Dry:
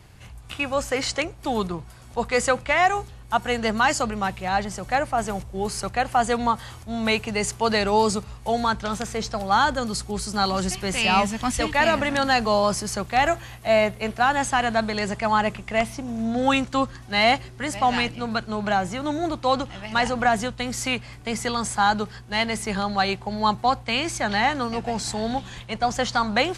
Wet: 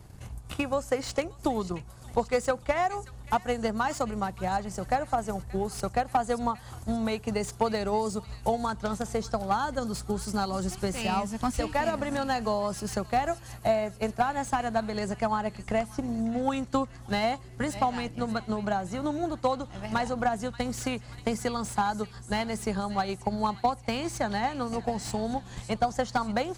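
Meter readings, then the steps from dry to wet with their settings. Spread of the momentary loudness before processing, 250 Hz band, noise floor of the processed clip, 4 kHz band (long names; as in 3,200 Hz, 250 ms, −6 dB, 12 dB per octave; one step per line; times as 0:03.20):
8 LU, −4.0 dB, −47 dBFS, −12.0 dB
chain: parametric band 2,600 Hz −10 dB 1.9 octaves
downward compressor 2 to 1, threshold −31 dBFS, peak gain reduction 8.5 dB
transient designer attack +7 dB, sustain −3 dB
delay with a high-pass on its return 581 ms, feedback 56%, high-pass 1,800 Hz, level −14.5 dB
slew-rate limiting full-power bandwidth 110 Hz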